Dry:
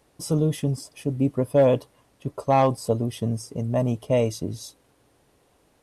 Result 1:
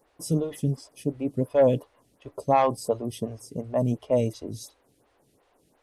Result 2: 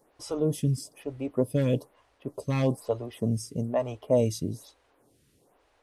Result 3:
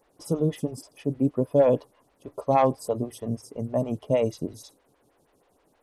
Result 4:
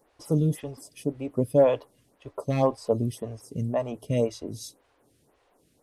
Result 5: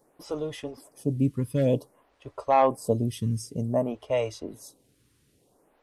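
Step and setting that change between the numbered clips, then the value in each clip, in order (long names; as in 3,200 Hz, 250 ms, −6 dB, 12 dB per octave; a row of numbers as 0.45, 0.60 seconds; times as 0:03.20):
phaser with staggered stages, speed: 2.8, 1.1, 6.3, 1.9, 0.54 Hertz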